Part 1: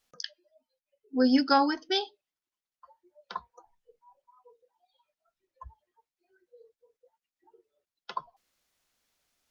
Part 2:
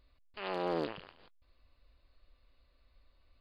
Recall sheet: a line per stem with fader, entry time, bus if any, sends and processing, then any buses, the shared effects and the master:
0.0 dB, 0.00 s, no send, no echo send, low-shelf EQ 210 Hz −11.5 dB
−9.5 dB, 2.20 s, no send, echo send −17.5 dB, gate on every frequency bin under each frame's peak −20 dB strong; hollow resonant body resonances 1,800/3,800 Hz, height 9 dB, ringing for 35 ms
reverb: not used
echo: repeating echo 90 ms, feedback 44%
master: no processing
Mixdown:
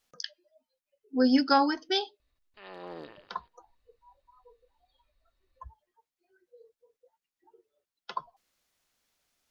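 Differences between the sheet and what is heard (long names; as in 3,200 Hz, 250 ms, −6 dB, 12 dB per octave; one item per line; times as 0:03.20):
stem 1: missing low-shelf EQ 210 Hz −11.5 dB
stem 2: missing gate on every frequency bin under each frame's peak −20 dB strong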